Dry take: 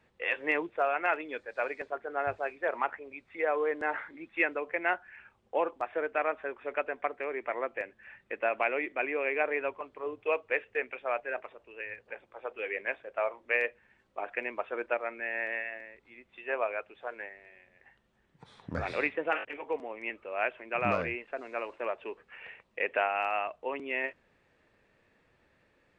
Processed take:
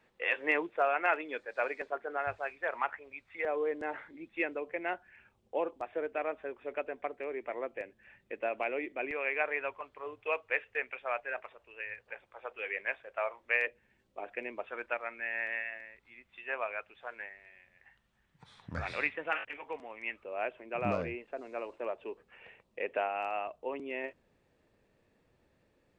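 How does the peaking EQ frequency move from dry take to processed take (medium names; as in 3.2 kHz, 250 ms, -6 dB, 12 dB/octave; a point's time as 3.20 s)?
peaking EQ -9 dB 2 oct
77 Hz
from 2.17 s 310 Hz
from 3.45 s 1.4 kHz
from 9.11 s 290 Hz
from 13.67 s 1.3 kHz
from 14.67 s 390 Hz
from 20.23 s 1.8 kHz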